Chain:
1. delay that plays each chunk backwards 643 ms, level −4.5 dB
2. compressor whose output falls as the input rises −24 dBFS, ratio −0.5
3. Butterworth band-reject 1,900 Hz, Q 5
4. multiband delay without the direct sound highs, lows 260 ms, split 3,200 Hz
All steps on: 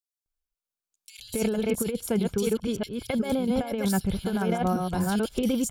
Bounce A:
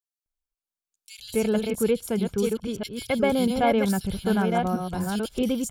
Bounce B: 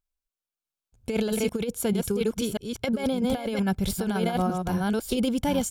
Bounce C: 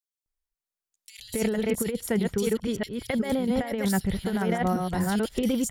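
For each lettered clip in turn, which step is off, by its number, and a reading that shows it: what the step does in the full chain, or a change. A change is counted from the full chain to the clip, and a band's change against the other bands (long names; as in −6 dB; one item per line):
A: 2, change in crest factor +2.0 dB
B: 4, echo-to-direct ratio 15.5 dB to none audible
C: 3, 2 kHz band +3.0 dB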